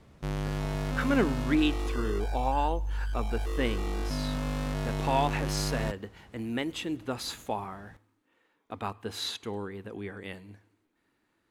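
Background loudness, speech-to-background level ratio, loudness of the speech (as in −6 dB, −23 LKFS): −33.5 LKFS, 0.5 dB, −33.0 LKFS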